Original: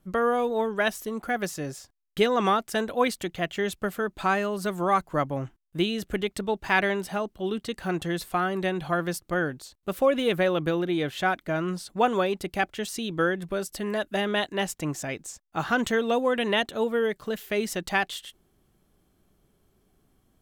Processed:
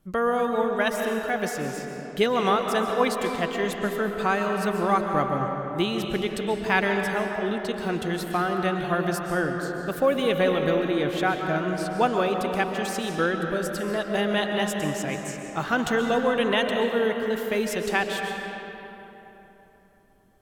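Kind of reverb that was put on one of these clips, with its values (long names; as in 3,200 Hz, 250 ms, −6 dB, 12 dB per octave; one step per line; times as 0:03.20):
comb and all-pass reverb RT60 3.6 s, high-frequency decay 0.55×, pre-delay 95 ms, DRR 3 dB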